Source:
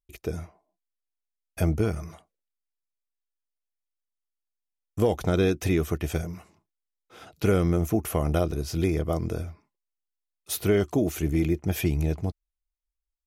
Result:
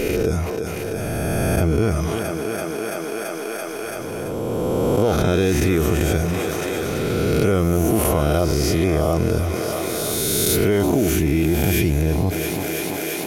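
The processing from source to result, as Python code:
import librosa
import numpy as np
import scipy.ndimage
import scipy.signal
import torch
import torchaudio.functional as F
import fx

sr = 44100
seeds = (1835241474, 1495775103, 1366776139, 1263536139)

p1 = fx.spec_swells(x, sr, rise_s=1.31)
p2 = p1 + fx.echo_thinned(p1, sr, ms=335, feedback_pct=78, hz=230.0, wet_db=-17.0, dry=0)
p3 = fx.env_flatten(p2, sr, amount_pct=70)
y = p3 * 10.0 ** (1.0 / 20.0)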